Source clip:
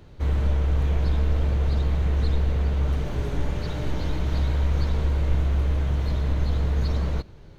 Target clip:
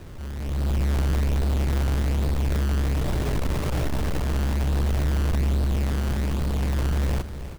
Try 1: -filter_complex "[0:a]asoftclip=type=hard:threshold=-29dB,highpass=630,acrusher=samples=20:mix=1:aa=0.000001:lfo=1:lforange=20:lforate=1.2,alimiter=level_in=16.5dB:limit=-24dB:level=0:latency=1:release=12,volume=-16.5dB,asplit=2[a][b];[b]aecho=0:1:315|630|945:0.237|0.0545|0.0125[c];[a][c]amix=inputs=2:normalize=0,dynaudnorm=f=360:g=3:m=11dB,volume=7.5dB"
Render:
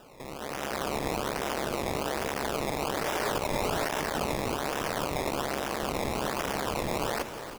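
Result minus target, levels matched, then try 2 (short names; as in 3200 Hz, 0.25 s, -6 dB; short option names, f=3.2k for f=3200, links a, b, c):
500 Hz band +8.5 dB
-filter_complex "[0:a]acrusher=samples=20:mix=1:aa=0.000001:lfo=1:lforange=20:lforate=1.2,asoftclip=type=hard:threshold=-29dB,alimiter=level_in=16.5dB:limit=-24dB:level=0:latency=1:release=12,volume=-16.5dB,asplit=2[a][b];[b]aecho=0:1:315|630|945:0.237|0.0545|0.0125[c];[a][c]amix=inputs=2:normalize=0,dynaudnorm=f=360:g=3:m=11dB,volume=7.5dB"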